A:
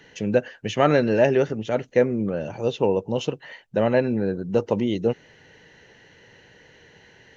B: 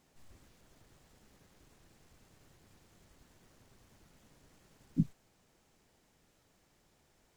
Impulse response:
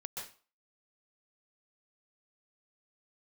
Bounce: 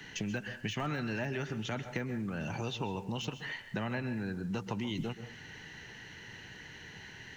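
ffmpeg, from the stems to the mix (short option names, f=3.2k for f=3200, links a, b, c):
-filter_complex "[0:a]deesser=0.95,equalizer=f=530:w=1.9:g=-14,acompressor=threshold=-35dB:ratio=2,volume=2.5dB,asplit=2[a][b];[b]volume=-8dB[c];[1:a]volume=0.5dB[d];[2:a]atrim=start_sample=2205[e];[c][e]afir=irnorm=-1:irlink=0[f];[a][d][f]amix=inputs=3:normalize=0,acrossover=split=190|740[g][h][i];[g]acompressor=threshold=-39dB:ratio=4[j];[h]acompressor=threshold=-41dB:ratio=4[k];[i]acompressor=threshold=-37dB:ratio=4[l];[j][k][l]amix=inputs=3:normalize=0"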